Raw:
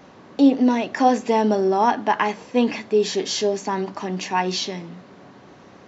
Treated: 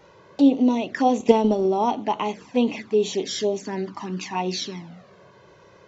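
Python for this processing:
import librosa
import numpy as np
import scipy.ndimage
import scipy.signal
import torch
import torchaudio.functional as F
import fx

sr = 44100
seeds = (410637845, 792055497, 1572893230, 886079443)

y = fx.env_flanger(x, sr, rest_ms=2.2, full_db=-18.0)
y = fx.transient(y, sr, attack_db=9, sustain_db=-4, at=(1.2, 1.66))
y = y * 10.0 ** (-1.0 / 20.0)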